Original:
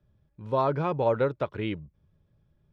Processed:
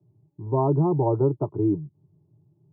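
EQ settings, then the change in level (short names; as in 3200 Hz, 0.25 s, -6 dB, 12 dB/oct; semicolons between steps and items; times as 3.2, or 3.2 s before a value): Chebyshev band-pass 100–930 Hz, order 3; resonant low shelf 520 Hz +6 dB, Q 1.5; fixed phaser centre 340 Hz, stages 8; +4.0 dB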